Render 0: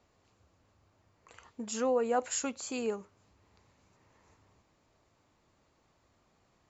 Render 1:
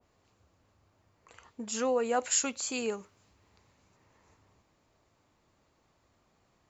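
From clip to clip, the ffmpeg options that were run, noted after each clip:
-af "adynamicequalizer=threshold=0.00355:dfrequency=1600:dqfactor=0.7:tfrequency=1600:tqfactor=0.7:attack=5:release=100:ratio=0.375:range=3.5:mode=boostabove:tftype=highshelf"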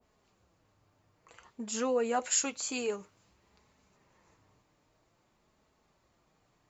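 -af "flanger=delay=4.6:depth=2.2:regen=-42:speed=0.53:shape=sinusoidal,volume=1.41"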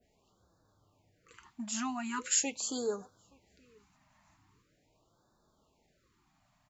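-filter_complex "[0:a]asplit=2[s0][s1];[s1]adelay=874.6,volume=0.0398,highshelf=f=4000:g=-19.7[s2];[s0][s2]amix=inputs=2:normalize=0,afftfilt=real='re*(1-between(b*sr/1024,400*pow(2500/400,0.5+0.5*sin(2*PI*0.42*pts/sr))/1.41,400*pow(2500/400,0.5+0.5*sin(2*PI*0.42*pts/sr))*1.41))':imag='im*(1-between(b*sr/1024,400*pow(2500/400,0.5+0.5*sin(2*PI*0.42*pts/sr))/1.41,400*pow(2500/400,0.5+0.5*sin(2*PI*0.42*pts/sr))*1.41))':win_size=1024:overlap=0.75"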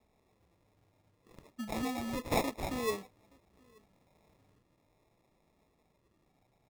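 -af "acrusher=samples=29:mix=1:aa=0.000001"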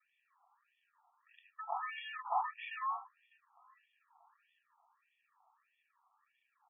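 -af "asoftclip=type=tanh:threshold=0.0266,asuperstop=centerf=2100:order=4:qfactor=4.9,afftfilt=real='re*between(b*sr/1024,960*pow(2500/960,0.5+0.5*sin(2*PI*1.6*pts/sr))/1.41,960*pow(2500/960,0.5+0.5*sin(2*PI*1.6*pts/sr))*1.41)':imag='im*between(b*sr/1024,960*pow(2500/960,0.5+0.5*sin(2*PI*1.6*pts/sr))/1.41,960*pow(2500/960,0.5+0.5*sin(2*PI*1.6*pts/sr))*1.41)':win_size=1024:overlap=0.75,volume=2.99"

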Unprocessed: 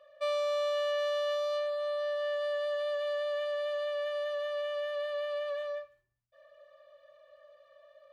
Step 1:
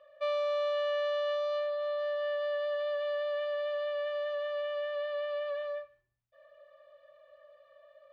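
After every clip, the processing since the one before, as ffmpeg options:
-af "lowpass=3500"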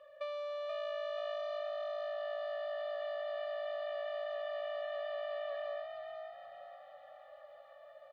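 -filter_complex "[0:a]acompressor=threshold=0.01:ratio=6,asplit=2[s0][s1];[s1]asplit=5[s2][s3][s4][s5][s6];[s2]adelay=481,afreqshift=54,volume=0.562[s7];[s3]adelay=962,afreqshift=108,volume=0.243[s8];[s4]adelay=1443,afreqshift=162,volume=0.104[s9];[s5]adelay=1924,afreqshift=216,volume=0.0447[s10];[s6]adelay=2405,afreqshift=270,volume=0.0193[s11];[s7][s8][s9][s10][s11]amix=inputs=5:normalize=0[s12];[s0][s12]amix=inputs=2:normalize=0,volume=1.12"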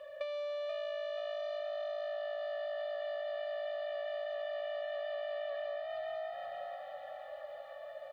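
-af "acompressor=threshold=0.00562:ratio=6,bandreject=f=1200:w=11,volume=2.82"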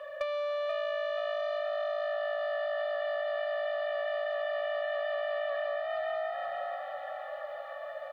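-filter_complex "[0:a]equalizer=f=1300:w=0.87:g=10.5,acrossover=split=110[s0][s1];[s1]volume=18.8,asoftclip=hard,volume=0.0531[s2];[s0][s2]amix=inputs=2:normalize=0,volume=1.26"

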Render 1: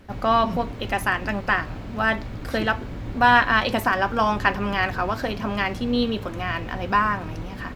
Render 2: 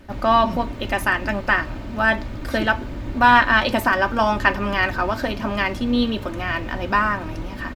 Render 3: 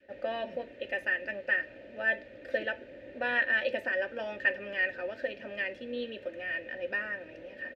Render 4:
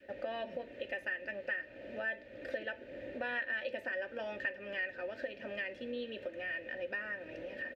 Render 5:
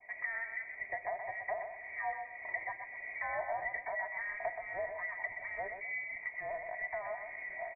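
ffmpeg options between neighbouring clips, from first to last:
-af "aecho=1:1:3.3:0.42,volume=1.26"
-filter_complex "[0:a]asplit=3[s0][s1][s2];[s0]bandpass=f=530:t=q:w=8,volume=1[s3];[s1]bandpass=f=1840:t=q:w=8,volume=0.501[s4];[s2]bandpass=f=2480:t=q:w=8,volume=0.355[s5];[s3][s4][s5]amix=inputs=3:normalize=0,adynamicequalizer=threshold=0.00631:dfrequency=600:dqfactor=1.1:tfrequency=600:tqfactor=1.1:attack=5:release=100:ratio=0.375:range=2:mode=cutabove:tftype=bell"
-af "acompressor=threshold=0.00562:ratio=2.5,volume=1.58"
-filter_complex "[0:a]asplit=2[s0][s1];[s1]aecho=0:1:125|250|375|500:0.447|0.13|0.0376|0.0109[s2];[s0][s2]amix=inputs=2:normalize=0,lowpass=f=2100:t=q:w=0.5098,lowpass=f=2100:t=q:w=0.6013,lowpass=f=2100:t=q:w=0.9,lowpass=f=2100:t=q:w=2.563,afreqshift=-2500"

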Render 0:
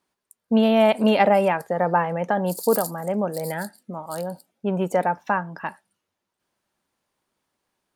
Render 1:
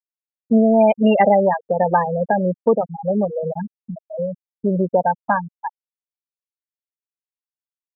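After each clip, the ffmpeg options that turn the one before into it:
-filter_complex "[0:a]afftfilt=real='re*gte(hypot(re,im),0.224)':imag='im*gte(hypot(re,im),0.224)':win_size=1024:overlap=0.75,asplit=2[s0][s1];[s1]acompressor=threshold=0.0398:ratio=6,volume=1.26[s2];[s0][s2]amix=inputs=2:normalize=0,volume=1.19"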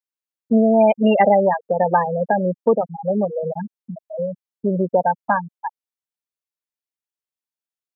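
-af "lowshelf=f=69:g=-12"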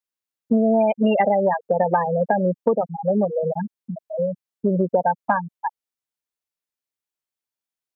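-af "acompressor=threshold=0.158:ratio=6,volume=1.19"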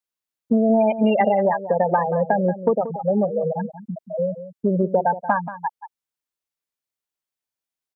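-filter_complex "[0:a]asplit=2[s0][s1];[s1]adelay=180.8,volume=0.224,highshelf=f=4000:g=-4.07[s2];[s0][s2]amix=inputs=2:normalize=0"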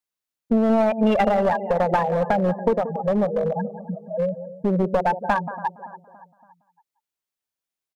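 -filter_complex "[0:a]asplit=2[s0][s1];[s1]adelay=283,lowpass=f=2600:p=1,volume=0.141,asplit=2[s2][s3];[s3]adelay=283,lowpass=f=2600:p=1,volume=0.51,asplit=2[s4][s5];[s5]adelay=283,lowpass=f=2600:p=1,volume=0.51,asplit=2[s6][s7];[s7]adelay=283,lowpass=f=2600:p=1,volume=0.51[s8];[s0][s2][s4][s6][s8]amix=inputs=5:normalize=0,aeval=exprs='clip(val(0),-1,0.126)':c=same"

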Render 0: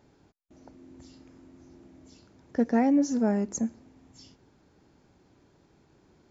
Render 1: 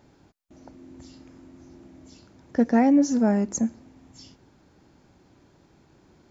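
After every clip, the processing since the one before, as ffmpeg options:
-af "equalizer=f=430:w=6.8:g=-4,volume=1.68"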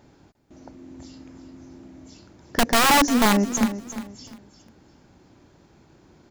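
-filter_complex "[0:a]aeval=exprs='(mod(5.62*val(0)+1,2)-1)/5.62':c=same,asplit=2[s0][s1];[s1]aecho=0:1:351|702|1053:0.251|0.0703|0.0197[s2];[s0][s2]amix=inputs=2:normalize=0,volume=1.41"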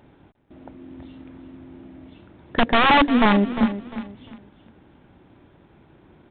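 -af "acrusher=bits=5:mode=log:mix=0:aa=0.000001,volume=1.26" -ar 8000 -c:a adpcm_g726 -b:a 40k

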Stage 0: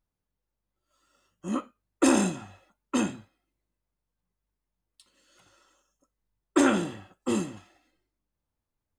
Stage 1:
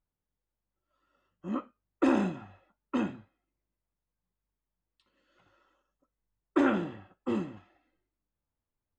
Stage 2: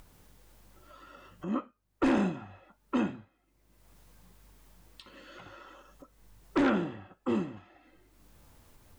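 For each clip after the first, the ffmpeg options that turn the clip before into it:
-af "lowpass=2400,volume=0.668"
-af "acompressor=mode=upward:threshold=0.0158:ratio=2.5,aeval=exprs='0.224*(cos(1*acos(clip(val(0)/0.224,-1,1)))-cos(1*PI/2))+0.0891*(cos(5*acos(clip(val(0)/0.224,-1,1)))-cos(5*PI/2))+0.0316*(cos(7*acos(clip(val(0)/0.224,-1,1)))-cos(7*PI/2))':c=same,volume=0.596"

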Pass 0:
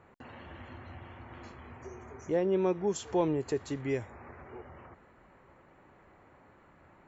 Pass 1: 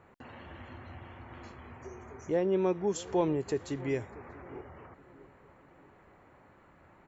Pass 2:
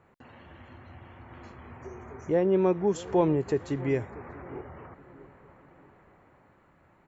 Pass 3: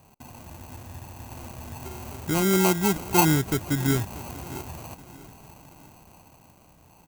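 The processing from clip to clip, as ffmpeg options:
-filter_complex "[0:a]asplit=2[s0][s1];[s1]adelay=638,lowpass=f=1200:p=1,volume=0.112,asplit=2[s2][s3];[s3]adelay=638,lowpass=f=1200:p=1,volume=0.47,asplit=2[s4][s5];[s5]adelay=638,lowpass=f=1200:p=1,volume=0.47,asplit=2[s6][s7];[s7]adelay=638,lowpass=f=1200:p=1,volume=0.47[s8];[s0][s2][s4][s6][s8]amix=inputs=5:normalize=0"
-filter_complex "[0:a]equalizer=f=150:t=o:w=0.77:g=2.5,acrossover=split=2600[s0][s1];[s0]dynaudnorm=f=290:g=11:m=2.37[s2];[s2][s1]amix=inputs=2:normalize=0,volume=0.708"
-af "aecho=1:1:1:0.86,acrusher=samples=25:mix=1:aa=0.000001,aexciter=amount=2.3:drive=4.8:freq=6200,volume=1.41"

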